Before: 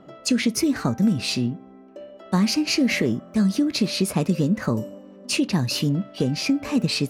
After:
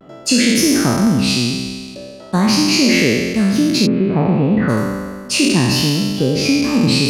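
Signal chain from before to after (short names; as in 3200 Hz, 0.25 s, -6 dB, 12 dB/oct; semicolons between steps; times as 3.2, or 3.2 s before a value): spectral trails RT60 1.76 s; 3.86–4.68 LPF 1600 Hz -> 3100 Hz 24 dB/oct; vibrato 0.37 Hz 29 cents; gain +3.5 dB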